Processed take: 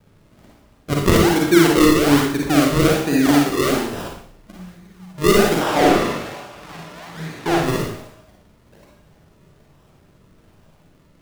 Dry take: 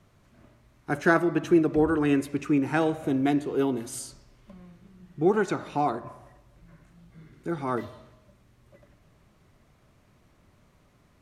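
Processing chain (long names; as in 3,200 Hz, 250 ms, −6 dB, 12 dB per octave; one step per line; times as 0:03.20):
sample-and-hold swept by an LFO 39×, swing 100% 1.2 Hz
0:05.61–0:07.58: mid-hump overdrive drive 25 dB, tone 4,300 Hz, clips at −14.5 dBFS
four-comb reverb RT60 0.58 s, DRR −2 dB
level +4.5 dB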